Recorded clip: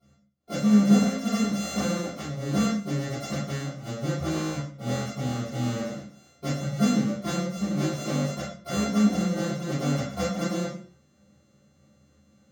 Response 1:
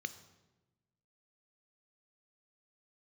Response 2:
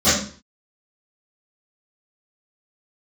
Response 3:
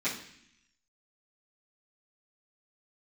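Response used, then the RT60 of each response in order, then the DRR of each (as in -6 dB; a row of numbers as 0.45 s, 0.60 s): 2; 1.1 s, 0.45 s, 0.65 s; 12.0 dB, -20.5 dB, -13.5 dB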